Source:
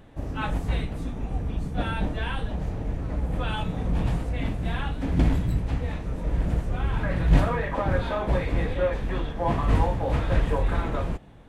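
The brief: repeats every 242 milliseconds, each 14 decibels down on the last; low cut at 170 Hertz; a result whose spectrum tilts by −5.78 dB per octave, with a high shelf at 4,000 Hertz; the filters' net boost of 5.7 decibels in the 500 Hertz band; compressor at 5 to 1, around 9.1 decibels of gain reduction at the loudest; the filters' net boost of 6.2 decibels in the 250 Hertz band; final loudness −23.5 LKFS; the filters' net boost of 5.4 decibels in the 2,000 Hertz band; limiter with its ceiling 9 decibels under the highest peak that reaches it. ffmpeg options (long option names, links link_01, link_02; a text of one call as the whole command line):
ffmpeg -i in.wav -af "highpass=170,equalizer=frequency=250:width_type=o:gain=8.5,equalizer=frequency=500:width_type=o:gain=4.5,equalizer=frequency=2000:width_type=o:gain=8,highshelf=frequency=4000:gain=-7,acompressor=threshold=-24dB:ratio=5,alimiter=limit=-22.5dB:level=0:latency=1,aecho=1:1:242|484:0.2|0.0399,volume=8dB" out.wav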